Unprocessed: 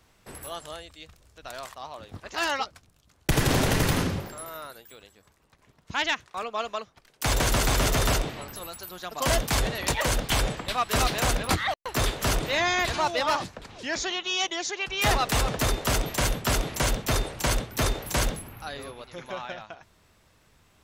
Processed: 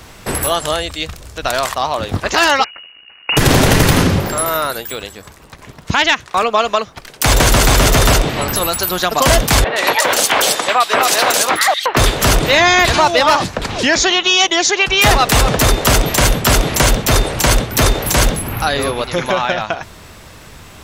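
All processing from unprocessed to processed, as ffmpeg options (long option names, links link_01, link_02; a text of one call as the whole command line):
ffmpeg -i in.wav -filter_complex "[0:a]asettb=1/sr,asplit=3[link_01][link_02][link_03];[link_01]atrim=end=2.644[link_04];[link_02]atrim=start=2.64:end=3.37,asetpts=PTS-STARTPTS,afade=type=in:duration=0.004:curve=qsin,afade=type=out:start_time=0.726:duration=0.004:curve=qsin,acompressor=threshold=-37dB:ratio=2.5:attack=3.2:release=140:knee=1:detection=peak,aeval=exprs='max(val(0),0)':channel_layout=same,lowpass=frequency=2500:width_type=q:width=0.5098,lowpass=frequency=2500:width_type=q:width=0.6013,lowpass=frequency=2500:width_type=q:width=0.9,lowpass=frequency=2500:width_type=q:width=2.563,afreqshift=-2900[link_05];[link_03]atrim=start=3.366[link_06];[link_04][link_05]acrossfade=duration=0.004:curve1=hsin:curve2=qsin[link_07];[link_07][link_06]acrossfade=duration=0.004:curve1=qsin:curve2=hsin,asettb=1/sr,asplit=3[link_08][link_09][link_10];[link_08]atrim=end=9.644[link_11];[link_09]atrim=start=9.64:end=11.97,asetpts=PTS-STARTPTS,afade=type=in:duration=0.004:curve=qsin,afade=type=out:start_time=2.326:duration=0.004:curve=qsin,highpass=450,acrossover=split=3000[link_12][link_13];[link_13]adelay=120[link_14];[link_12][link_14]amix=inputs=2:normalize=0,atrim=end_sample=102753[link_15];[link_10]atrim=start=11.966[link_16];[link_11][link_15]acrossfade=duration=0.004:curve1=hsin:curve2=qsin[link_17];[link_17][link_16]acrossfade=duration=0.004:curve1=qsin:curve2=hsin,acompressor=threshold=-37dB:ratio=2.5,alimiter=level_in=24.5dB:limit=-1dB:release=50:level=0:latency=1,volume=-1dB" out.wav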